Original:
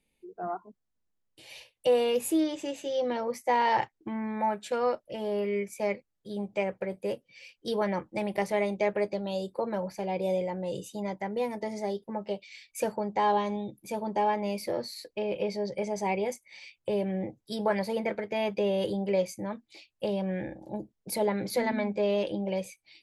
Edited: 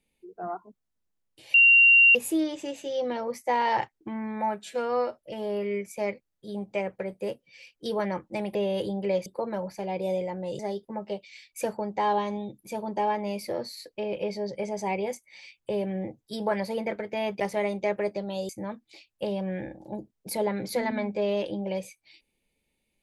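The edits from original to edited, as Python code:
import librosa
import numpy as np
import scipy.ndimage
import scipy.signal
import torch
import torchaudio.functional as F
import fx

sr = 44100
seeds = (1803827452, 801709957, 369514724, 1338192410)

y = fx.edit(x, sr, fx.bleep(start_s=1.54, length_s=0.61, hz=2760.0, db=-13.0),
    fx.stretch_span(start_s=4.64, length_s=0.36, factor=1.5),
    fx.swap(start_s=8.37, length_s=1.09, other_s=18.59, other_length_s=0.71),
    fx.cut(start_s=10.79, length_s=0.99), tone=tone)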